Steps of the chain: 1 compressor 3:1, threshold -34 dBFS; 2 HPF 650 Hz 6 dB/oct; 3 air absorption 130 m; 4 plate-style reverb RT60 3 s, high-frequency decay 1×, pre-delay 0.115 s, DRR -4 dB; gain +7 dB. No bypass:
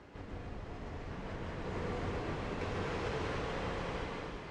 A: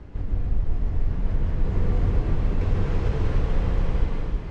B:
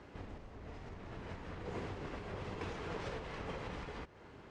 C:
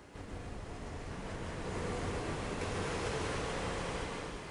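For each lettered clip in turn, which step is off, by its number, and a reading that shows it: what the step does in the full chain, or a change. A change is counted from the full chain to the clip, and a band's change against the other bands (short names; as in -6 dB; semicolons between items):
2, 125 Hz band +15.0 dB; 4, loudness change -5.5 LU; 3, 8 kHz band +10.5 dB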